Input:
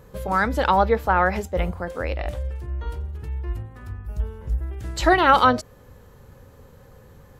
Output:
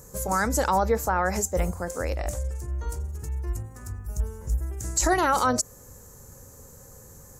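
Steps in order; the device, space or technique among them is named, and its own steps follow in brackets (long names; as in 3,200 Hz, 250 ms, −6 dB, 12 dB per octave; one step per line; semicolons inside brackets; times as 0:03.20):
over-bright horn tweeter (high shelf with overshoot 4,800 Hz +13.5 dB, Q 3; brickwall limiter −11.5 dBFS, peak gain reduction 9 dB)
level −1.5 dB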